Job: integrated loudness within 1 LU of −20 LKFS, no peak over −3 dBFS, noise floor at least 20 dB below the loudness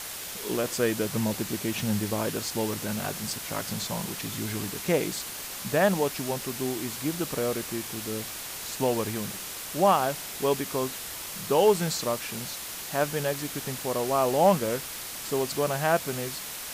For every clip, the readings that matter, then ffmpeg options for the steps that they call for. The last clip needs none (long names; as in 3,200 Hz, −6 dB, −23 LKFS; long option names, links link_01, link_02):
background noise floor −38 dBFS; target noise floor −48 dBFS; integrated loudness −28.0 LKFS; sample peak −10.5 dBFS; target loudness −20.0 LKFS
→ -af "afftdn=noise_reduction=10:noise_floor=-38"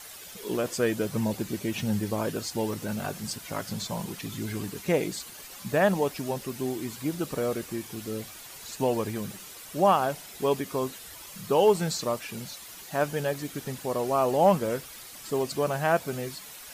background noise floor −45 dBFS; target noise floor −49 dBFS
→ -af "afftdn=noise_reduction=6:noise_floor=-45"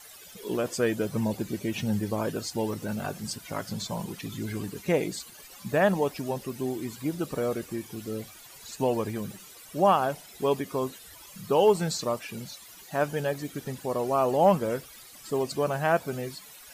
background noise floor −49 dBFS; integrated loudness −29.0 LKFS; sample peak −10.5 dBFS; target loudness −20.0 LKFS
→ -af "volume=9dB,alimiter=limit=-3dB:level=0:latency=1"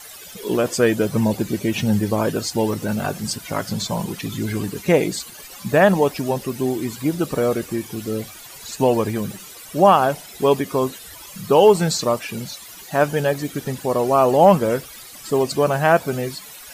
integrated loudness −20.0 LKFS; sample peak −3.0 dBFS; background noise floor −40 dBFS